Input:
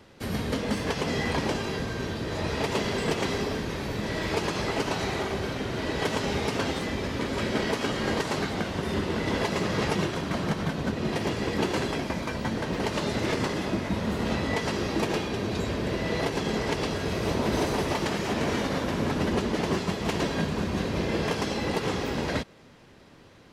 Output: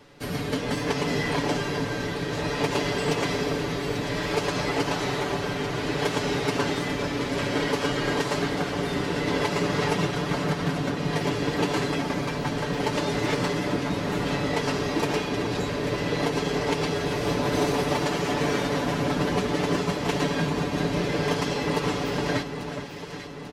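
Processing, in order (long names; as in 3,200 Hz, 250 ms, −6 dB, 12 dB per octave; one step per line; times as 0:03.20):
parametric band 100 Hz −2.5 dB 1.2 octaves
comb filter 6.9 ms, depth 70%
on a send: delay that swaps between a low-pass and a high-pass 421 ms, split 1,600 Hz, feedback 73%, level −7 dB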